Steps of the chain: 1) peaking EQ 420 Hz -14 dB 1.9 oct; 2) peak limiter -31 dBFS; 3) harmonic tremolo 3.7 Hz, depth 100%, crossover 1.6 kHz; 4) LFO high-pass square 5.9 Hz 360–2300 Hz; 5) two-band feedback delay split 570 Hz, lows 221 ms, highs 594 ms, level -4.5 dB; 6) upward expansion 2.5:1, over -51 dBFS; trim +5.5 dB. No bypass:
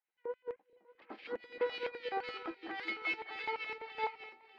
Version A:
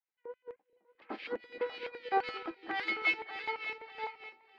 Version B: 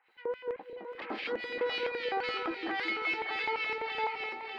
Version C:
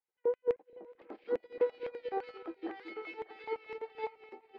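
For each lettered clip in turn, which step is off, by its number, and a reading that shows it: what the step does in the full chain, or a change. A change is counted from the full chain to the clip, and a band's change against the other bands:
2, mean gain reduction 1.5 dB; 6, crest factor change -5.0 dB; 1, 500 Hz band +12.5 dB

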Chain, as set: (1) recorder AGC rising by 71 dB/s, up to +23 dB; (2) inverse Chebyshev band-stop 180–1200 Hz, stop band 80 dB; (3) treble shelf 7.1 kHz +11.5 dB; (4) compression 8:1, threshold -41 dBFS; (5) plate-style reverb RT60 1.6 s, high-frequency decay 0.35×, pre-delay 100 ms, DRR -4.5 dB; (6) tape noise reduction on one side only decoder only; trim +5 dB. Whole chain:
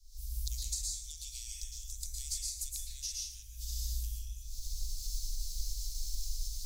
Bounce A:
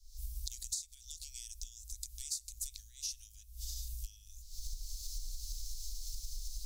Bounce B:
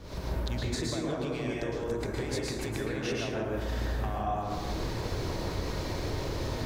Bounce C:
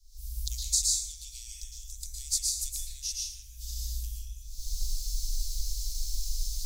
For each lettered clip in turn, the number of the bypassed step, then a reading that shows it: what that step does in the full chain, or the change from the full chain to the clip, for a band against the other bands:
5, crest factor change +5.5 dB; 2, 2 kHz band +22.5 dB; 4, mean gain reduction 3.0 dB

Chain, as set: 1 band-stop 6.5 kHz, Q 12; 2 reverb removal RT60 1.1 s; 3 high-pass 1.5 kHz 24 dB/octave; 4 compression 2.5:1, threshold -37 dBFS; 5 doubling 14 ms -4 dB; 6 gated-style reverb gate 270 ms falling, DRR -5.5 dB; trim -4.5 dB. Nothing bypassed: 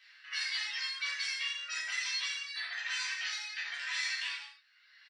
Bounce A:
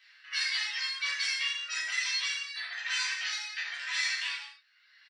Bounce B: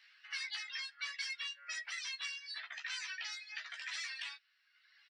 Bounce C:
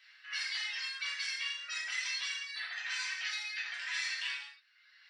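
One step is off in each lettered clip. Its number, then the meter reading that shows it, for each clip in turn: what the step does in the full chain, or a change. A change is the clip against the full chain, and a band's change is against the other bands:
4, loudness change +3.5 LU; 6, loudness change -6.5 LU; 5, loudness change -1.0 LU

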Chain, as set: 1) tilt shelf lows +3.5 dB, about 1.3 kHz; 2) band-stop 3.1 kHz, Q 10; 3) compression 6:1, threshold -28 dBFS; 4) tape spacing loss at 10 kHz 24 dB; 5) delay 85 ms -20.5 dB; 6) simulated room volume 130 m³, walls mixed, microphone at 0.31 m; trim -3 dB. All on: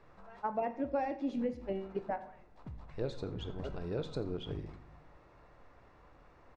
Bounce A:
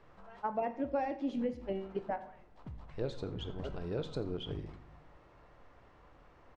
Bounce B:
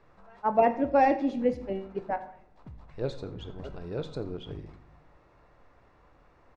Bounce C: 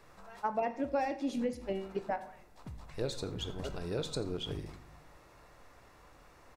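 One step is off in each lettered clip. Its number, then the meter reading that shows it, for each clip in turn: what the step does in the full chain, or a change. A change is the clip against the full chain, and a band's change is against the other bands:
2, 4 kHz band +2.5 dB; 3, mean gain reduction 3.5 dB; 4, 4 kHz band +7.0 dB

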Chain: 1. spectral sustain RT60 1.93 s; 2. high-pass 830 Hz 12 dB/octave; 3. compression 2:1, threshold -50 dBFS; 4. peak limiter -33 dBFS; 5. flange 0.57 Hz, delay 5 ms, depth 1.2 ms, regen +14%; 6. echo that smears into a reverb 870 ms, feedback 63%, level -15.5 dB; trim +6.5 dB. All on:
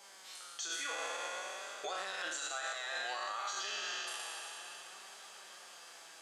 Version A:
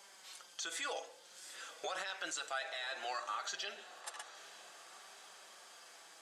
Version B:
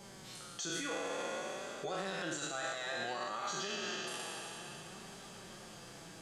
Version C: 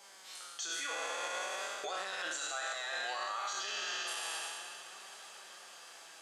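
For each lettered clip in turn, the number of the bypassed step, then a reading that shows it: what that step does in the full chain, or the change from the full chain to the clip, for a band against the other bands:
1, 250 Hz band +3.0 dB; 2, 250 Hz band +16.5 dB; 3, mean gain reduction 9.0 dB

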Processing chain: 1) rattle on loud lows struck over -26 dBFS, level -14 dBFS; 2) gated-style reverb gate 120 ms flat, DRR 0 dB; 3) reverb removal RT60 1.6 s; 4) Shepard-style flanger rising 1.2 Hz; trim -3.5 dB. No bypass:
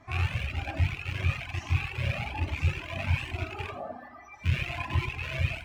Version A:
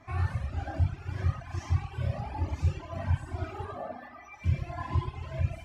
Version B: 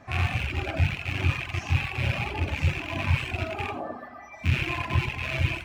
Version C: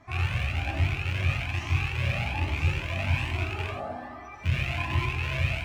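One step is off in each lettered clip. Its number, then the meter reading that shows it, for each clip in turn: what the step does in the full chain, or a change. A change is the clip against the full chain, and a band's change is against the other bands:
1, 4 kHz band -12.5 dB; 4, loudness change +3.5 LU; 3, loudness change +2.5 LU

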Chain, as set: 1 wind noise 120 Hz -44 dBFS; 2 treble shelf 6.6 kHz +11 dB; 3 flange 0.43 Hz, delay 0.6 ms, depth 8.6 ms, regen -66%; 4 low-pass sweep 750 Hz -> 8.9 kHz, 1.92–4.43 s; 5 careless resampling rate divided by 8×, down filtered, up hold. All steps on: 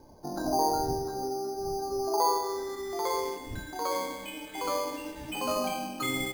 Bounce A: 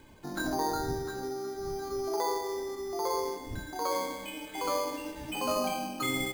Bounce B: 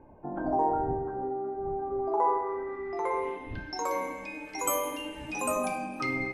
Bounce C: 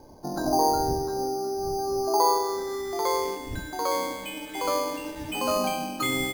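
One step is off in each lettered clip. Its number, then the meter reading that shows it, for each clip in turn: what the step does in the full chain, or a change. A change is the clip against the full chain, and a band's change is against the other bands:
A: 4, momentary loudness spread change -4 LU; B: 5, momentary loudness spread change -1 LU; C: 3, loudness change +4.5 LU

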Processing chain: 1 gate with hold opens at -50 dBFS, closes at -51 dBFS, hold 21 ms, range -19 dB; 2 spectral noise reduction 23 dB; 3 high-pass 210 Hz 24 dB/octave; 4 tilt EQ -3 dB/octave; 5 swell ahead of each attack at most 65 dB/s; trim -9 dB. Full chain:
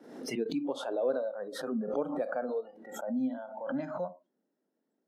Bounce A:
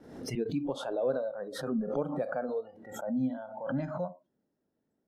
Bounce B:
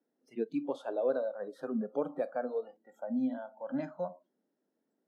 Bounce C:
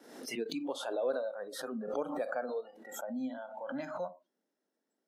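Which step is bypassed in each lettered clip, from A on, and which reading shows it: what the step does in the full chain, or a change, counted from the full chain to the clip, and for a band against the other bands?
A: 3, 125 Hz band +10.5 dB; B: 5, momentary loudness spread change +2 LU; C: 4, 125 Hz band -7.5 dB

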